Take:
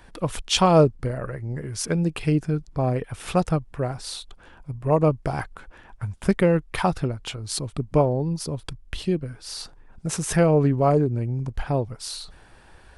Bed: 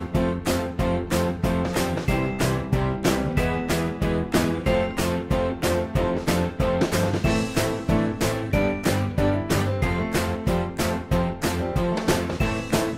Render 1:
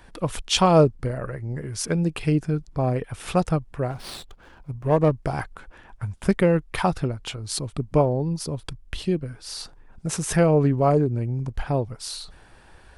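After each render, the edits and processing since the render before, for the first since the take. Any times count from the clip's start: 3.90–5.12 s: sliding maximum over 5 samples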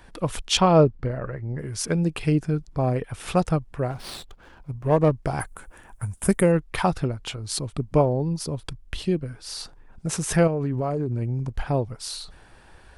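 0.57–1.59 s: distance through air 140 m; 5.40–6.52 s: resonant high shelf 6.5 kHz +13 dB, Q 1.5; 10.47–11.22 s: compression 10:1, threshold -21 dBFS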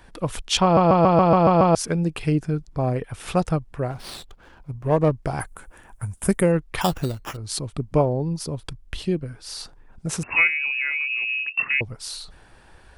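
0.63 s: stutter in place 0.14 s, 8 plays; 6.81–7.37 s: sample-rate reducer 4.2 kHz; 10.23–11.81 s: frequency inversion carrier 2.7 kHz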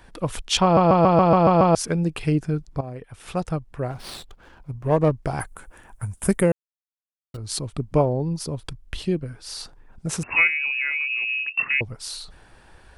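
2.81–4.07 s: fade in, from -14 dB; 6.52–7.34 s: mute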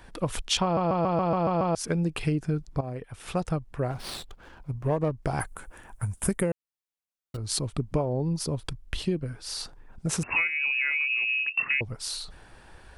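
compression 10:1, threshold -22 dBFS, peak gain reduction 10 dB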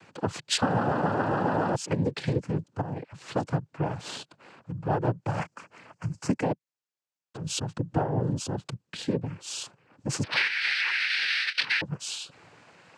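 noise-vocoded speech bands 8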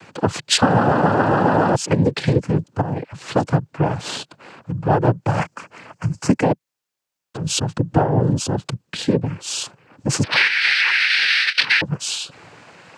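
trim +10 dB; peak limiter -2 dBFS, peak gain reduction 2 dB

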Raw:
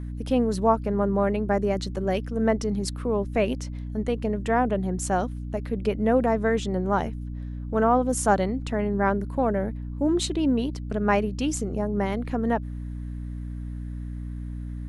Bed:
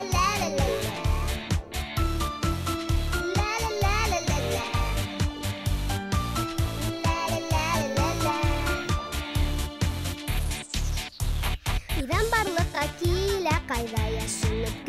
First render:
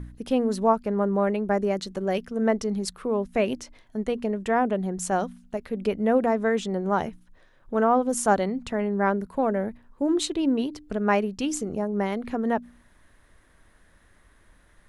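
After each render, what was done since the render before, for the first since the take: de-hum 60 Hz, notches 5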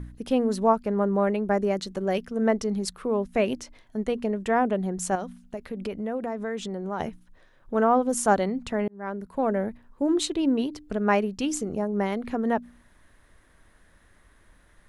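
5.15–7.00 s: compression 2.5:1, threshold -30 dBFS; 8.88–9.51 s: fade in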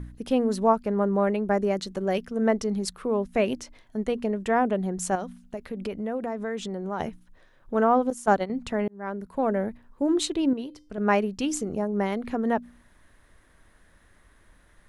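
8.10–8.50 s: gate -25 dBFS, range -12 dB; 10.53–10.98 s: feedback comb 520 Hz, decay 0.35 s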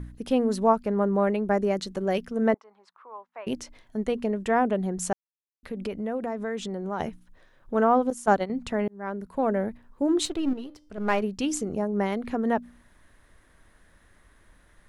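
2.54–3.47 s: ladder band-pass 1.1 kHz, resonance 55%; 5.13–5.63 s: mute; 10.25–11.22 s: partial rectifier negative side -7 dB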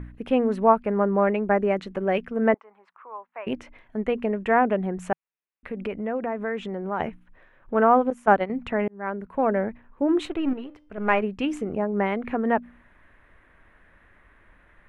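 FFT filter 160 Hz 0 dB, 2.5 kHz +6 dB, 4.8 kHz -16 dB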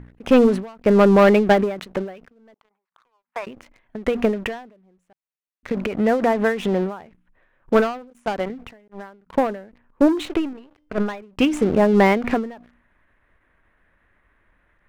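waveshaping leveller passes 3; endings held to a fixed fall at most 110 dB/s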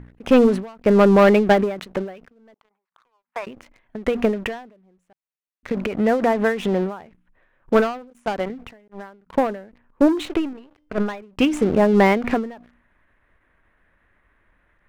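no audible change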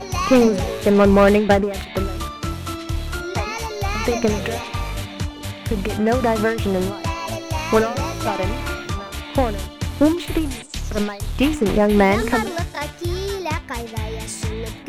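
add bed +0.5 dB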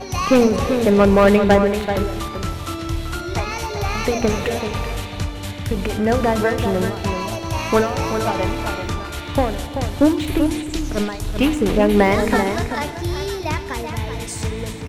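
echo from a far wall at 66 m, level -7 dB; FDN reverb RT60 2.5 s, high-frequency decay 0.9×, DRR 12.5 dB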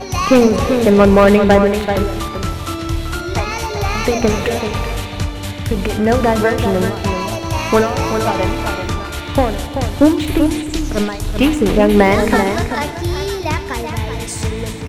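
trim +4 dB; peak limiter -1 dBFS, peak gain reduction 2 dB

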